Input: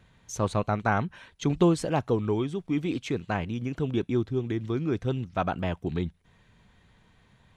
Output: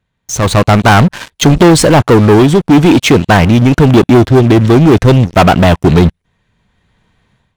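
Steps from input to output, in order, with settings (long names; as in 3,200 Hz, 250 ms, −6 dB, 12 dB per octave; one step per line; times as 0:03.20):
leveller curve on the samples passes 5
automatic gain control gain up to 15 dB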